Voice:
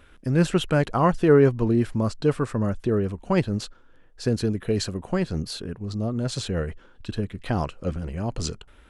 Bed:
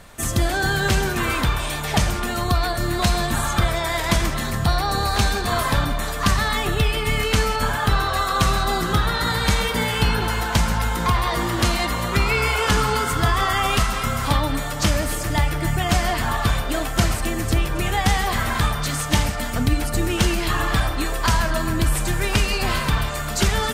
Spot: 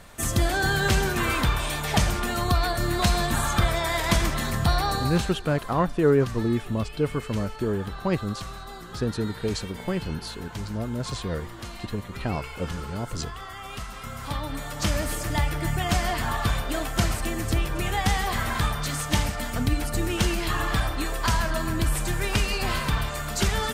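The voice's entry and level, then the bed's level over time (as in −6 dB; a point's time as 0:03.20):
4.75 s, −3.5 dB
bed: 0:04.88 −2.5 dB
0:05.47 −18.5 dB
0:13.59 −18.5 dB
0:14.99 −4.5 dB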